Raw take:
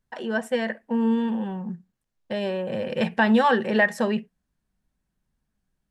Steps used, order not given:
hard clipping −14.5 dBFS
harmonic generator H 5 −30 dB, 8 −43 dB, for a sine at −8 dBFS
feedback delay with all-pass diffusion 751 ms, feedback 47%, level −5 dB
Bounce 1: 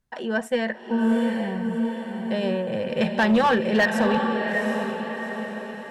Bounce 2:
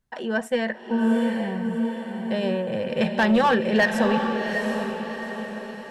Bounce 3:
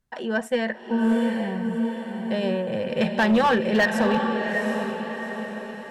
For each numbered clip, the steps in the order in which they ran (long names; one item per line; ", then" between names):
feedback delay with all-pass diffusion, then hard clipping, then harmonic generator
hard clipping, then harmonic generator, then feedback delay with all-pass diffusion
harmonic generator, then feedback delay with all-pass diffusion, then hard clipping